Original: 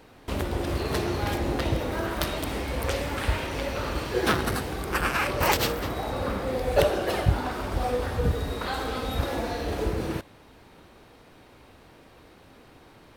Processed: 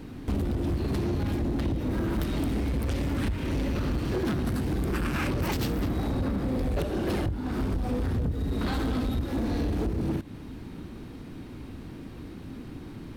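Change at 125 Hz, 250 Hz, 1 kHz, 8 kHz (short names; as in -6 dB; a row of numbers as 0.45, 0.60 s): +2.0, +4.0, -8.5, -8.5 dB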